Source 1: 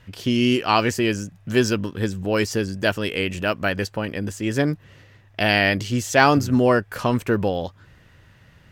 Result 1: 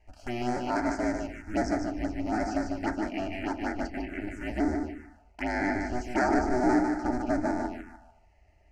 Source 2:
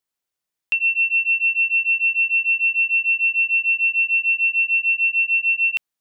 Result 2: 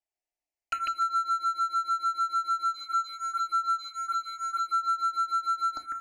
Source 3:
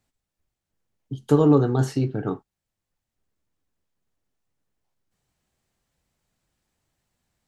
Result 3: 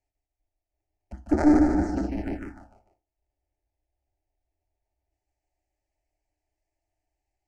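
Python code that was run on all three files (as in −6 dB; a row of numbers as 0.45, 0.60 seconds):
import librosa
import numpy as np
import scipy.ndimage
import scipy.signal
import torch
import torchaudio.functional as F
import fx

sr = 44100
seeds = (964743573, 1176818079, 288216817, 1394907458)

p1 = fx.cycle_switch(x, sr, every=2, mode='inverted')
p2 = 10.0 ** (-14.0 / 20.0) * np.tanh(p1 / 10.0 ** (-14.0 / 20.0))
p3 = p1 + F.gain(torch.from_numpy(p2), -7.0).numpy()
p4 = scipy.signal.sosfilt(scipy.signal.butter(2, 4600.0, 'lowpass', fs=sr, output='sos'), p3)
p5 = fx.fixed_phaser(p4, sr, hz=720.0, stages=8)
p6 = p5 + fx.echo_feedback(p5, sr, ms=149, feedback_pct=36, wet_db=-5.0, dry=0)
p7 = fx.rev_fdn(p6, sr, rt60_s=0.39, lf_ratio=1.05, hf_ratio=0.6, size_ms=20.0, drr_db=7.5)
p8 = fx.env_phaser(p7, sr, low_hz=240.0, high_hz=2800.0, full_db=-16.0)
y = p8 * 10.0 ** (-30 / 20.0) / np.sqrt(np.mean(np.square(p8)))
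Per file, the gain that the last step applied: −9.0, −3.5, −5.5 decibels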